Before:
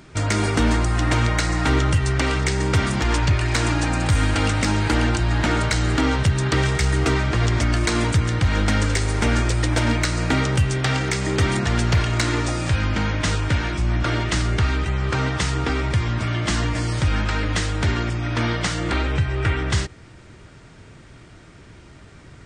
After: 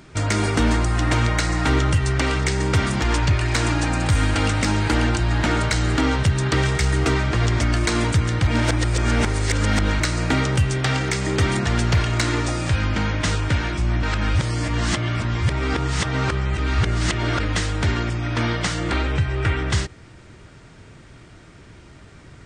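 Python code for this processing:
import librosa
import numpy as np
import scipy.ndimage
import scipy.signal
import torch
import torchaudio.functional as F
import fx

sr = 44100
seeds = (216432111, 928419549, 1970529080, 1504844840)

y = fx.edit(x, sr, fx.reverse_span(start_s=8.47, length_s=1.53),
    fx.reverse_span(start_s=14.03, length_s=3.37), tone=tone)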